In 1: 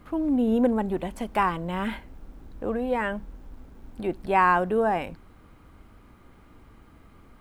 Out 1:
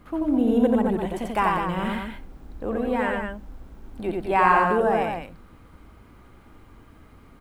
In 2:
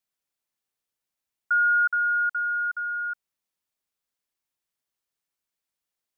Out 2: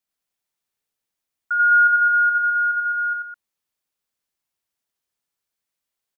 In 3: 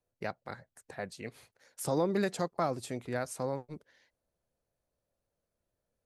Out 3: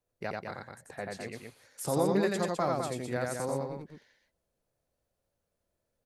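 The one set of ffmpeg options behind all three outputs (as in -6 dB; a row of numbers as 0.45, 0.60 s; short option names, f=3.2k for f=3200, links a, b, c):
-af "aecho=1:1:87.46|207:0.794|0.501"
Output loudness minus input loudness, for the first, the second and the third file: +2.5, +6.5, +2.5 LU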